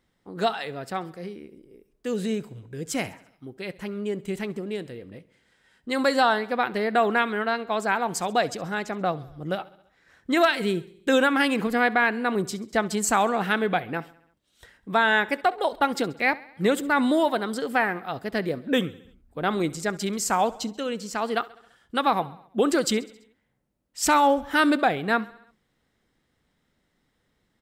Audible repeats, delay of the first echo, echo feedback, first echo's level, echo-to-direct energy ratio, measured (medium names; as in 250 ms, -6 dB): 4, 67 ms, 60%, -21.0 dB, -19.0 dB